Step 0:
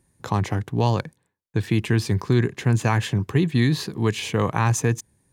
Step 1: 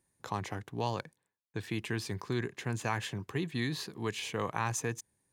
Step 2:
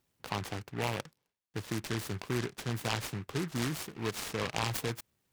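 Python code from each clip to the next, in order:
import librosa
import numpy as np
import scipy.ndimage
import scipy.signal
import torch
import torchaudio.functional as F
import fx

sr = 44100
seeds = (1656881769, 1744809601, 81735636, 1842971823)

y1 = fx.low_shelf(x, sr, hz=280.0, db=-10.0)
y1 = y1 * 10.0 ** (-8.5 / 20.0)
y2 = fx.noise_mod_delay(y1, sr, seeds[0], noise_hz=1500.0, depth_ms=0.15)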